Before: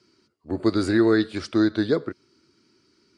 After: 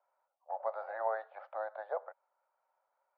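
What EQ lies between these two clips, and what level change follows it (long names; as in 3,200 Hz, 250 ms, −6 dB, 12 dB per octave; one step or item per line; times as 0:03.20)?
Chebyshev high-pass with heavy ripple 530 Hz, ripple 3 dB
low-pass with resonance 810 Hz, resonance Q 4.3
high-frequency loss of the air 280 metres
−3.5 dB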